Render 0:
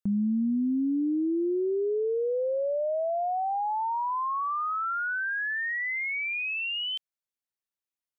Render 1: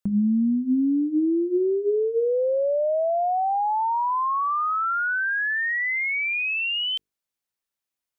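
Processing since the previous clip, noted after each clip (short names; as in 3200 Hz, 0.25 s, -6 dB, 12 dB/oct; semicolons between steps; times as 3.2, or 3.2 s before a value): notches 50/100/150/200/250/300/350/400/450 Hz; gain +5.5 dB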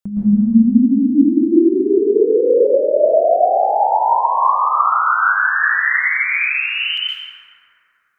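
plate-style reverb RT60 3.2 s, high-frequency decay 0.3×, pre-delay 0.105 s, DRR -8.5 dB; gain -1 dB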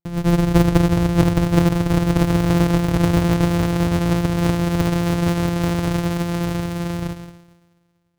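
sample sorter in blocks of 256 samples; low shelf 280 Hz +10.5 dB; Doppler distortion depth 0.97 ms; gain -9.5 dB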